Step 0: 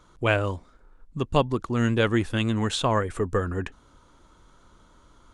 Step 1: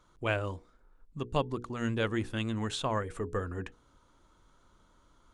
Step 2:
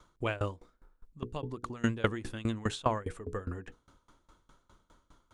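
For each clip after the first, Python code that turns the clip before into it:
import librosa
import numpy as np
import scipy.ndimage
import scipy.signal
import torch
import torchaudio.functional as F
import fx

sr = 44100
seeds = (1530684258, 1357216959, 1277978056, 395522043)

y1 = fx.hum_notches(x, sr, base_hz=60, count=8)
y1 = F.gain(torch.from_numpy(y1), -8.0).numpy()
y2 = fx.tremolo_decay(y1, sr, direction='decaying', hz=4.9, depth_db=23)
y2 = F.gain(torch.from_numpy(y2), 7.0).numpy()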